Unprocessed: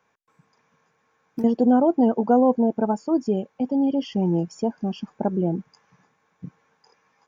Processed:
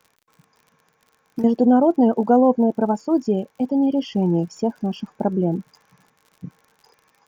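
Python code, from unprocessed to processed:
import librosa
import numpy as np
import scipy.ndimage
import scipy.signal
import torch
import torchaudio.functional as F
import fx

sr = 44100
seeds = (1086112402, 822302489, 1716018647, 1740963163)

y = fx.dmg_crackle(x, sr, seeds[0], per_s=59.0, level_db=-43.0)
y = y * librosa.db_to_amplitude(2.5)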